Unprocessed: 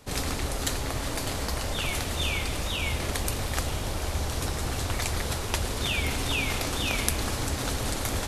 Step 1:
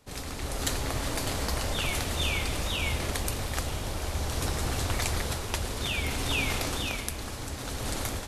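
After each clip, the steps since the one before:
automatic gain control gain up to 9 dB
level −8.5 dB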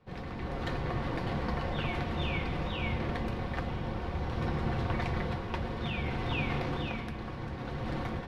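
high-frequency loss of the air 350 metres
on a send at −2 dB: convolution reverb RT60 0.15 s, pre-delay 3 ms
on the sum: level −2.5 dB

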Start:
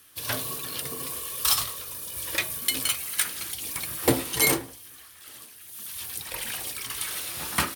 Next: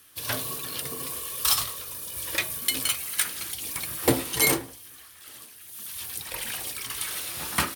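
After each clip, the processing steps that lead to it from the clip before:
no processing that can be heard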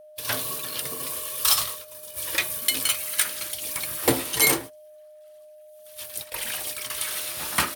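noise gate −35 dBFS, range −22 dB
low-shelf EQ 360 Hz −5.5 dB
steady tone 610 Hz −48 dBFS
level +2.5 dB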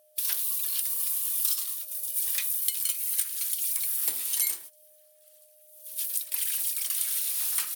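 first-order pre-emphasis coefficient 0.97
downward compressor 5 to 1, threshold −31 dBFS, peak gain reduction 16 dB
level +5.5 dB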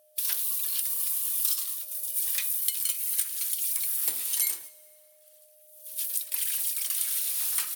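dense smooth reverb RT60 2.4 s, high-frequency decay 0.75×, DRR 18.5 dB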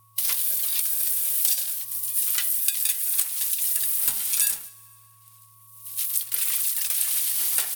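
ring modulation 500 Hz
level +7.5 dB

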